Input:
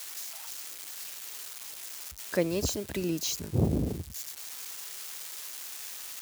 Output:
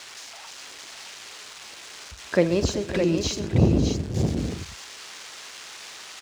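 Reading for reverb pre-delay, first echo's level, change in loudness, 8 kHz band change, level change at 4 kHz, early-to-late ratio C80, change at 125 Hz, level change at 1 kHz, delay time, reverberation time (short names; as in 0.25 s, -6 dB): none, -13.5 dB, +10.0 dB, -0.5 dB, +5.0 dB, none, +8.5 dB, +8.0 dB, 47 ms, none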